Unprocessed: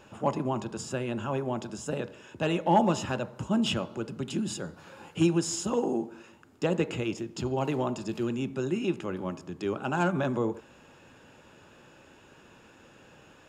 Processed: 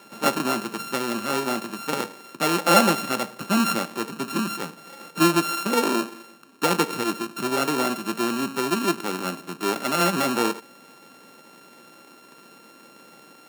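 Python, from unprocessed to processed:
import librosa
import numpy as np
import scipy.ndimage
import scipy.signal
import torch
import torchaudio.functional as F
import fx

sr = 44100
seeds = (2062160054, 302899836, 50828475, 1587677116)

y = np.r_[np.sort(x[:len(x) // 32 * 32].reshape(-1, 32), axis=1).ravel(), x[len(x) // 32 * 32:]]
y = scipy.signal.sosfilt(scipy.signal.butter(4, 190.0, 'highpass', fs=sr, output='sos'), y)
y = y * librosa.db_to_amplitude(6.0)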